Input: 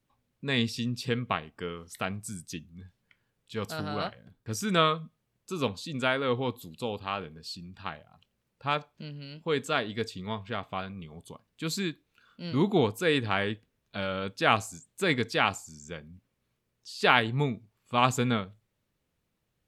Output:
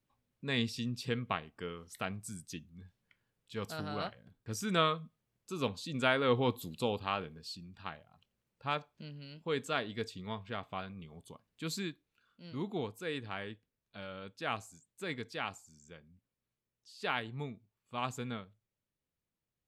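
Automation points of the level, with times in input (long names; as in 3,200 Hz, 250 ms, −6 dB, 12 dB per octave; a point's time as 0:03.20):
0:05.54 −5.5 dB
0:06.68 +1.5 dB
0:07.67 −6 dB
0:11.72 −6 dB
0:12.43 −13 dB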